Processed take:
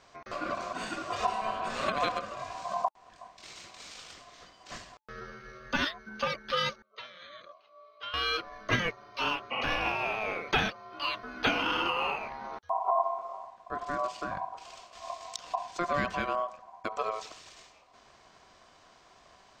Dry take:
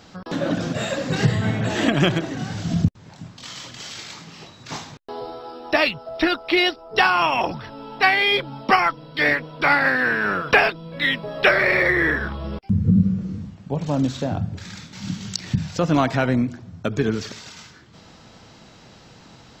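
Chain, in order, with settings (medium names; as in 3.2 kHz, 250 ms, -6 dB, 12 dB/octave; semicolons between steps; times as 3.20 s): 6.82–8.14 s: vowel filter i; 9.54–9.75 s: spectral replace 990–2400 Hz after; ring modulator 870 Hz; trim -8.5 dB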